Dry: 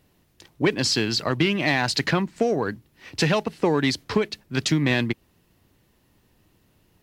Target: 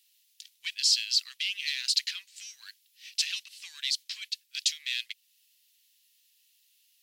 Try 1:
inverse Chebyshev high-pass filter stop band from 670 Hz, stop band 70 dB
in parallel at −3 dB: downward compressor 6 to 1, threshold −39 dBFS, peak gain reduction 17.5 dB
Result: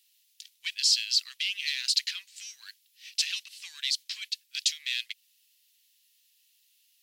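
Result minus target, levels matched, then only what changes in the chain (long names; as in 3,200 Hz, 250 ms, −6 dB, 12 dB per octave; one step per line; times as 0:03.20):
downward compressor: peak gain reduction −6.5 dB
change: downward compressor 6 to 1, threshold −47 dBFS, peak gain reduction 24 dB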